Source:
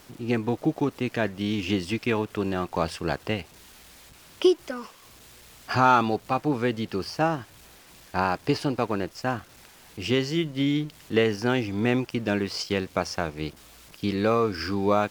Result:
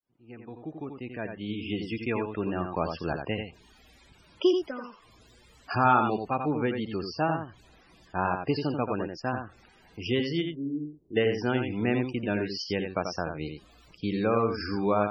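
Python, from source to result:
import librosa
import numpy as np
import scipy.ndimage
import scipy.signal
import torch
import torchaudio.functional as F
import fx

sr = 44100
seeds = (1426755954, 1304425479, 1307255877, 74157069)

y = fx.fade_in_head(x, sr, length_s=2.46)
y = fx.ladder_lowpass(y, sr, hz=410.0, resonance_pct=65, at=(10.45, 11.15), fade=0.02)
y = y + 10.0 ** (-6.0 / 20.0) * np.pad(y, (int(87 * sr / 1000.0), 0))[:len(y)]
y = fx.spec_topn(y, sr, count=64)
y = y * librosa.db_to_amplitude(-3.5)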